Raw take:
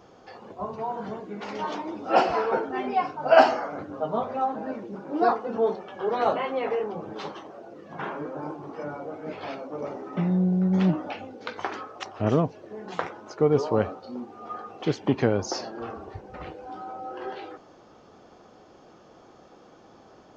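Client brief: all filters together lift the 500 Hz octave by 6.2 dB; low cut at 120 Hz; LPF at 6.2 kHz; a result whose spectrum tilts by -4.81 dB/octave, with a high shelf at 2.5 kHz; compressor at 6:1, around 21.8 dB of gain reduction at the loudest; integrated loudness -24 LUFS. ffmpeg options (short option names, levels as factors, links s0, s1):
-af "highpass=120,lowpass=6200,equalizer=f=500:t=o:g=7.5,highshelf=f=2500:g=5.5,acompressor=threshold=0.0316:ratio=6,volume=3.35"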